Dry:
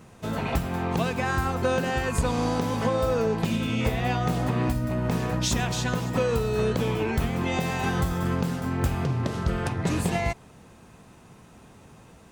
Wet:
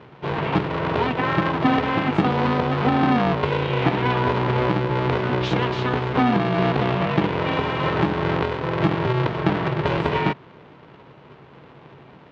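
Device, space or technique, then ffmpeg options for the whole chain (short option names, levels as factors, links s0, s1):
ring modulator pedal into a guitar cabinet: -af "aeval=exprs='val(0)*sgn(sin(2*PI*250*n/s))':c=same,highpass=100,equalizer=f=140:t=q:w=4:g=9,equalizer=f=250:t=q:w=4:g=7,equalizer=f=980:t=q:w=4:g=4,lowpass=f=3500:w=0.5412,lowpass=f=3500:w=1.3066,volume=1.41"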